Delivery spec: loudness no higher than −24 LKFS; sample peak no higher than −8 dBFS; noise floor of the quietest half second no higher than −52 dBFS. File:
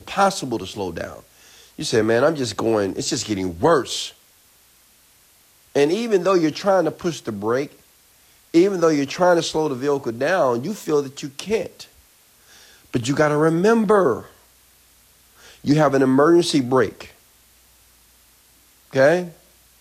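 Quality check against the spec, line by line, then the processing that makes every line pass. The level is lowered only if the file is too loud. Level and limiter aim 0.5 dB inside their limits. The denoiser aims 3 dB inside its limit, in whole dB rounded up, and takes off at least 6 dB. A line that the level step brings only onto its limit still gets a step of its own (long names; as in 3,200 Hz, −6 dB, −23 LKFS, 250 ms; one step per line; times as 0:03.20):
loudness −20.0 LKFS: out of spec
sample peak −5.5 dBFS: out of spec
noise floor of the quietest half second −55 dBFS: in spec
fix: level −4.5 dB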